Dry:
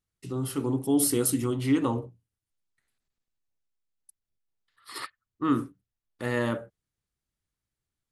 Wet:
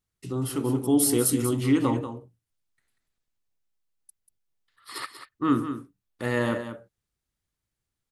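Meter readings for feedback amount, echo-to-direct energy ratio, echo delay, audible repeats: repeats not evenly spaced, −10.0 dB, 189 ms, 1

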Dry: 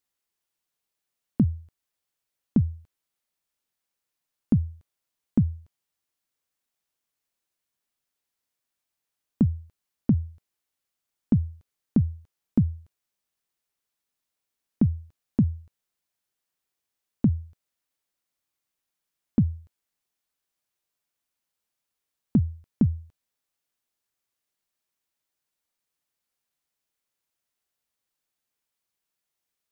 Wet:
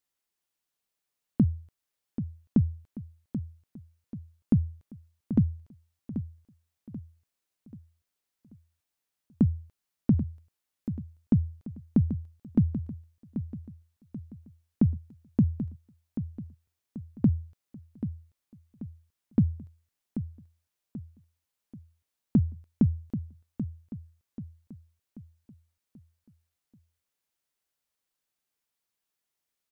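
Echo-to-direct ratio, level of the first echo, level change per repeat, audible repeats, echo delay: −9.5 dB, −10.5 dB, −7.0 dB, 4, 785 ms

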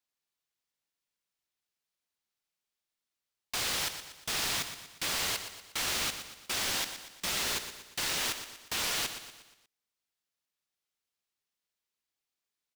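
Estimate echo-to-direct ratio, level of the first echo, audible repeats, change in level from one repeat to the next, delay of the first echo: −9.0 dB, −10.0 dB, 4, −6.5 dB, 119 ms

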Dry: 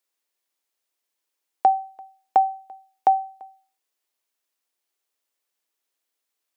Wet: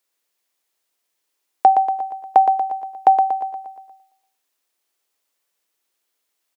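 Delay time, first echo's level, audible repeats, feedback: 118 ms, −6.5 dB, 6, 55%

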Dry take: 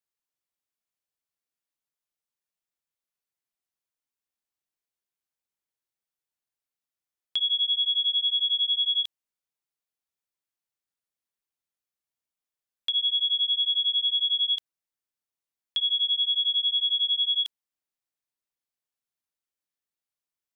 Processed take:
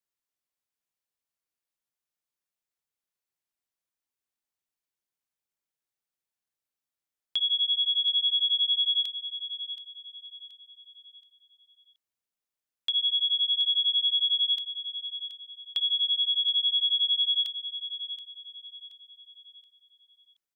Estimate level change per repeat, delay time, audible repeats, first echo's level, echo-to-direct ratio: −8.0 dB, 726 ms, 3, −12.0 dB, −11.5 dB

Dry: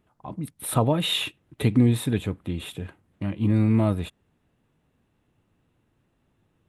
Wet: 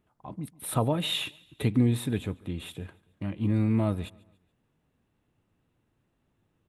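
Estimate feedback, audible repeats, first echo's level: 43%, 2, −23.5 dB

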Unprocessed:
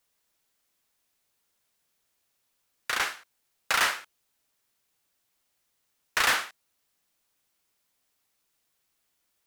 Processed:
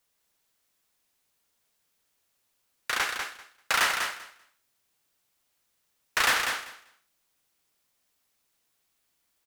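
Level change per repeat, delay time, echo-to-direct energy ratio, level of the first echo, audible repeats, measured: −16.0 dB, 195 ms, −6.0 dB, −6.0 dB, 2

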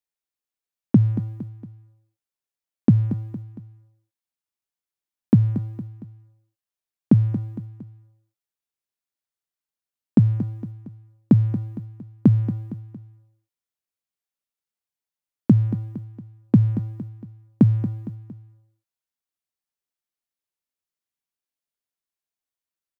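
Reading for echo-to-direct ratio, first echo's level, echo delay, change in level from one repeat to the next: −11.0 dB, −12.0 dB, 230 ms, −6.5 dB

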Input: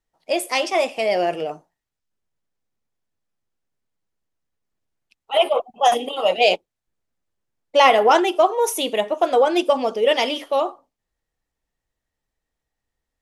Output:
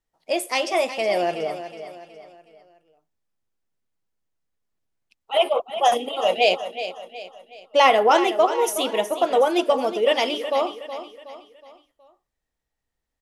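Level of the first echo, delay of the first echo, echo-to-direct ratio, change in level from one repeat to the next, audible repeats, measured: −11.5 dB, 369 ms, −10.5 dB, −7.5 dB, 4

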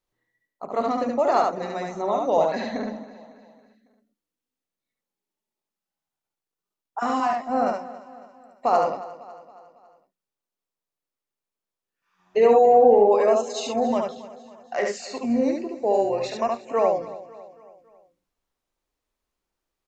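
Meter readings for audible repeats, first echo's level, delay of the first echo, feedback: 7, −3.0 dB, 72 ms, repeats not evenly spaced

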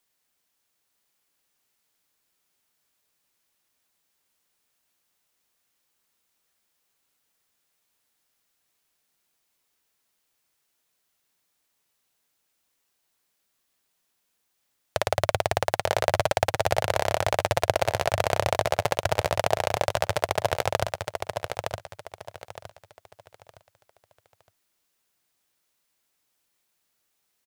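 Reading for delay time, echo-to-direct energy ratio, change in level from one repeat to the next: 914 ms, −5.0 dB, −10.5 dB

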